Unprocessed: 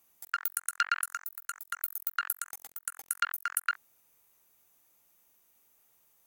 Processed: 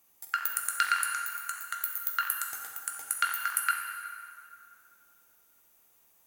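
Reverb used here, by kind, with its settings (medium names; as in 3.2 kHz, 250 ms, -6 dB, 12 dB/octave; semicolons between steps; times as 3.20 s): plate-style reverb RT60 2.4 s, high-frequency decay 0.7×, DRR 1.5 dB; trim +1 dB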